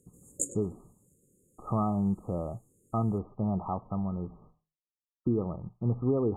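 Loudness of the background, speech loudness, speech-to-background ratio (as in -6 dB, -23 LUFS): -36.5 LUFS, -32.5 LUFS, 4.0 dB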